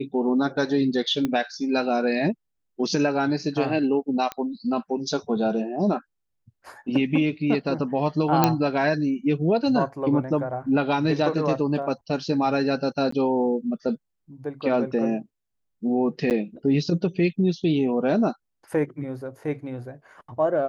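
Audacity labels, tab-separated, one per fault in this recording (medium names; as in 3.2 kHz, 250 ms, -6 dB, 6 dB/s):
1.250000	1.250000	pop -13 dBFS
4.320000	4.320000	pop -15 dBFS
8.440000	8.440000	pop -3 dBFS
13.110000	13.120000	dropout 14 ms
16.300000	16.310000	dropout 8.7 ms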